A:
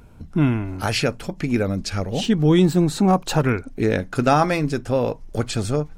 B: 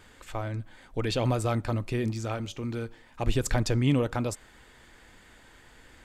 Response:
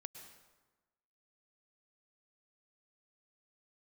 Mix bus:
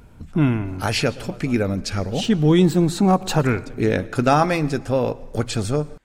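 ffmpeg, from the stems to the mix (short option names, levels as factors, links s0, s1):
-filter_complex "[0:a]volume=0.841,asplit=2[s0][s1];[s1]volume=0.473[s2];[1:a]volume=0.2[s3];[2:a]atrim=start_sample=2205[s4];[s2][s4]afir=irnorm=-1:irlink=0[s5];[s0][s3][s5]amix=inputs=3:normalize=0"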